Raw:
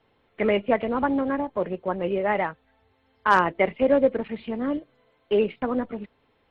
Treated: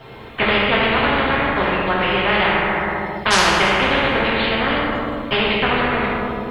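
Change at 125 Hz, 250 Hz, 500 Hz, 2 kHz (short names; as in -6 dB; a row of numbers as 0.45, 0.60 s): +12.0, +4.0, +3.0, +13.5 dB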